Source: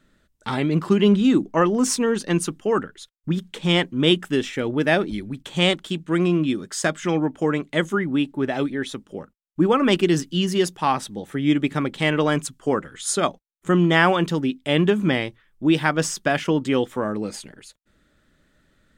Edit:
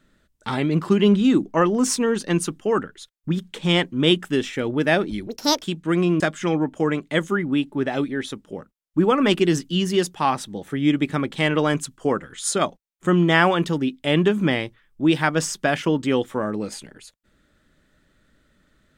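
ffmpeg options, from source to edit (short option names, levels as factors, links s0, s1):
-filter_complex "[0:a]asplit=4[s0][s1][s2][s3];[s0]atrim=end=5.274[s4];[s1]atrim=start=5.27:end=5.85,asetpts=PTS-STARTPTS,asetrate=72765,aresample=44100[s5];[s2]atrim=start=5.846:end=6.432[s6];[s3]atrim=start=6.818[s7];[s4][s5]acrossfade=d=0.004:c1=hsin:c2=hsin[s8];[s8][s6]acrossfade=d=0.004:c1=hsin:c2=hsin[s9];[s9][s7]acrossfade=d=0.004:c1=hsin:c2=hsin"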